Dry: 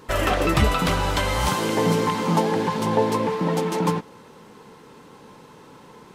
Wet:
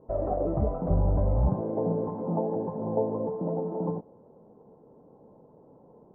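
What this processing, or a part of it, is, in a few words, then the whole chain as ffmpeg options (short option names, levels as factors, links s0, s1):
under water: -filter_complex "[0:a]asettb=1/sr,asplit=3[s0][s1][s2];[s0]atrim=end=0.904[s3];[s1]atrim=start=0.9:end=1.61,asetpts=PTS-STARTPTS,afade=t=in:d=0.004:c=qsin,afade=t=out:st=0.706:d=0.004:c=qsin,bass=f=250:g=11,treble=f=4000:g=8[s4];[s2]atrim=start=1.606[s5];[s3][s4]acrossfade=d=0.004:c1=hsin:c2=qsin[s6];[s6][s5]acrossfade=d=0.004:c1=qsin:c2=hsin,lowpass=f=730:w=0.5412,lowpass=f=730:w=1.3066,equalizer=f=650:t=o:w=0.57:g=8,volume=0.398"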